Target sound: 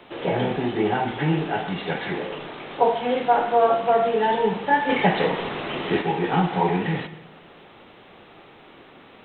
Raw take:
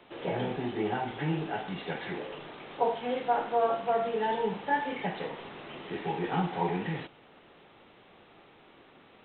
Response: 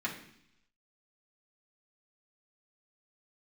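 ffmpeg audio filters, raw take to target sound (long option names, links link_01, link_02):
-filter_complex "[0:a]asettb=1/sr,asplit=3[link_01][link_02][link_03];[link_01]atrim=end=4.894[link_04];[link_02]atrim=start=4.89:end=6.02,asetpts=PTS-STARTPTS,afade=type=in:duration=0.004:curve=qsin,afade=type=out:start_time=1.126:duration=0.004:curve=qsin,acontrast=49[link_05];[link_03]atrim=start=6.016[link_06];[link_04][link_05]acrossfade=duration=0.004:curve1=hsin:curve2=qsin[link_07];[link_07][link_06]acrossfade=duration=0.004:curve1=qsin:curve2=hsin,asplit=2[link_08][link_09];[1:a]atrim=start_sample=2205,adelay=127[link_10];[link_09][link_10]afir=irnorm=-1:irlink=0,volume=-19.5dB[link_11];[link_08][link_11]amix=inputs=2:normalize=0,volume=8.5dB"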